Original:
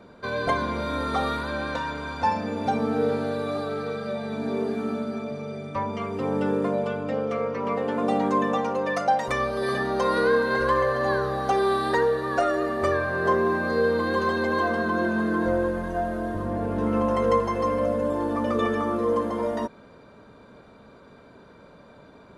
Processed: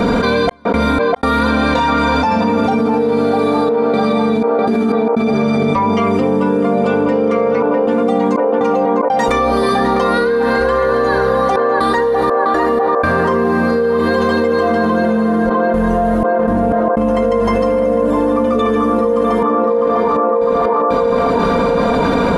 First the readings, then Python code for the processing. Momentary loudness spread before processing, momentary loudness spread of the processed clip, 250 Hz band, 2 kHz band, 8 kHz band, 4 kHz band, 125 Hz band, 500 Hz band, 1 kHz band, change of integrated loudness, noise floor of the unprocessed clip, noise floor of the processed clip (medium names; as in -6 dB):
7 LU, 1 LU, +13.0 dB, +8.0 dB, no reading, +10.5 dB, +10.5 dB, +12.0 dB, +11.0 dB, +11.0 dB, -50 dBFS, -15 dBFS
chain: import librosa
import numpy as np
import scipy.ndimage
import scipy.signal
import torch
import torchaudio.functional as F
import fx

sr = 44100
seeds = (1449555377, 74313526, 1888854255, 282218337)

y = fx.low_shelf(x, sr, hz=390.0, db=3.5)
y = y + 0.6 * np.pad(y, (int(4.2 * sr / 1000.0), 0))[:len(y)]
y = fx.step_gate(y, sr, bpm=61, pattern='xx.x.xxxxxxxxxx.', floor_db=-60.0, edge_ms=4.5)
y = fx.echo_banded(y, sr, ms=652, feedback_pct=54, hz=760.0, wet_db=-4.5)
y = fx.env_flatten(y, sr, amount_pct=100)